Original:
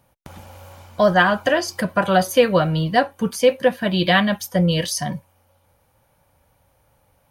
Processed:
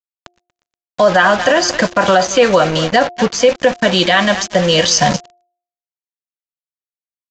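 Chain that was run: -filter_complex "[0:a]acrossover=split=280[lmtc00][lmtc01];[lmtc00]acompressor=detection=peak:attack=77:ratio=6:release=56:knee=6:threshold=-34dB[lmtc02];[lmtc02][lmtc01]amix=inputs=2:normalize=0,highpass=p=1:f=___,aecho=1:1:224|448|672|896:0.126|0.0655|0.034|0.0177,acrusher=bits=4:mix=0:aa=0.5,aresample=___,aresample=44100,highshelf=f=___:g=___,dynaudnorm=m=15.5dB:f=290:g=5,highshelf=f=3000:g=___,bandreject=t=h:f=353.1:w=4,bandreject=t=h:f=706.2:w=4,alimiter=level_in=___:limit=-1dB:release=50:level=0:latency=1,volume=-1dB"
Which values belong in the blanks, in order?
220, 16000, 6300, 6.5, -3.5, 10dB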